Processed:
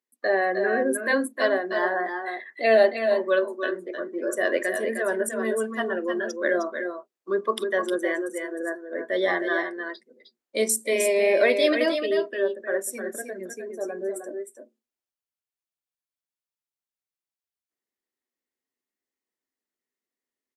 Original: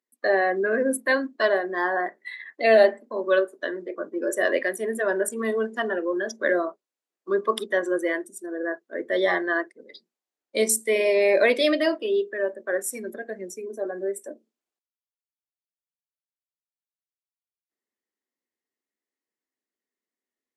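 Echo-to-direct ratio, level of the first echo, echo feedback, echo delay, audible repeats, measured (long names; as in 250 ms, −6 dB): −6.0 dB, −7.5 dB, repeats not evenly spaced, 308 ms, 1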